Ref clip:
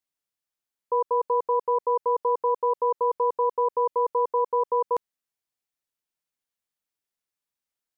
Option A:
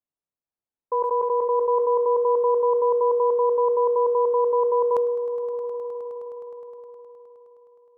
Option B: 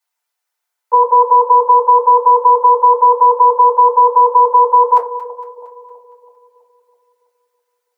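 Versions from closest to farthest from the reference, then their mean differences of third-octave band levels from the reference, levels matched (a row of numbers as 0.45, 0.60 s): A, B; 1.5, 2.5 dB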